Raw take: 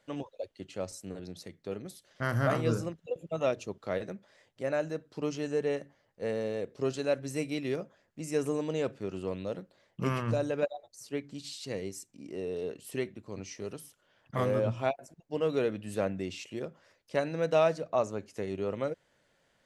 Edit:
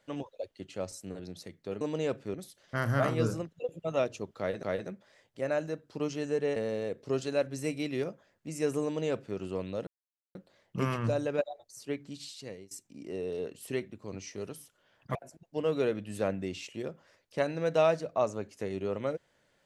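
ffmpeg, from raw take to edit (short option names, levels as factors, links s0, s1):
-filter_complex "[0:a]asplit=8[s0][s1][s2][s3][s4][s5][s6][s7];[s0]atrim=end=1.812[s8];[s1]atrim=start=8.558:end=9.092[s9];[s2]atrim=start=1.808:end=4.102[s10];[s3]atrim=start=3.848:end=5.782[s11];[s4]atrim=start=6.278:end=9.59,asetpts=PTS-STARTPTS,afade=t=out:st=3.308:d=0.004:c=hsin,apad=pad_dur=0.48[s12];[s5]atrim=start=9.59:end=11.95,asetpts=PTS-STARTPTS,afade=t=in:d=0.004:c=hsin,afade=t=out:st=1.55:d=0.81:c=qsin:silence=0.1[s13];[s6]atrim=start=11.95:end=14.392,asetpts=PTS-STARTPTS,afade=t=in:d=0.004:c=hsin:silence=0.1[s14];[s7]atrim=start=14.918[s15];[s8][s9]acrossfade=d=0.004:c1=hsin:c2=hsin[s16];[s16][s10]acrossfade=d=0.004:c1=hsin:c2=hsin[s17];[s17][s11]acrossfade=d=0.004:c1=hsin:c2=hsin[s18];[s12][s13][s14]concat=n=3:v=0:a=1[s19];[s18][s19]acrossfade=d=0.004:c1=hsin:c2=hsin[s20];[s20][s15]acrossfade=d=0.004:c1=hsin:c2=hsin"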